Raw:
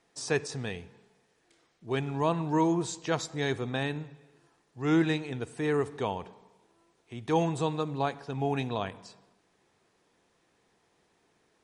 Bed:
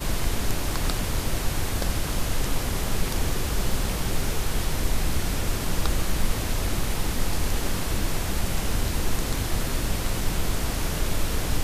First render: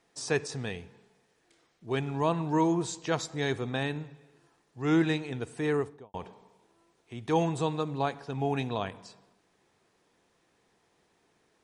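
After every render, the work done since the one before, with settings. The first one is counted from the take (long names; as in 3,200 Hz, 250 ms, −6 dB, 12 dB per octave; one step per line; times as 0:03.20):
0:05.69–0:06.14: fade out and dull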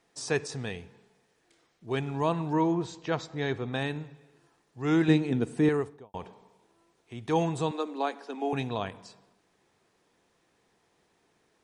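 0:02.53–0:03.73: high-frequency loss of the air 130 metres
0:05.08–0:05.69: parametric band 230 Hz +12 dB 1.7 octaves
0:07.71–0:08.53: Butterworth high-pass 220 Hz 72 dB per octave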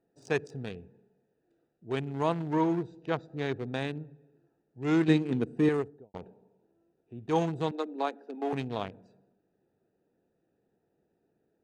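adaptive Wiener filter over 41 samples
low-shelf EQ 76 Hz −10 dB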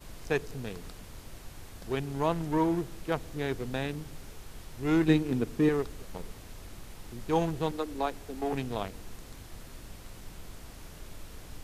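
mix in bed −20 dB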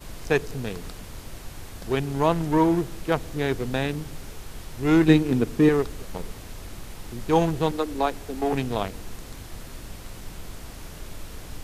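level +7 dB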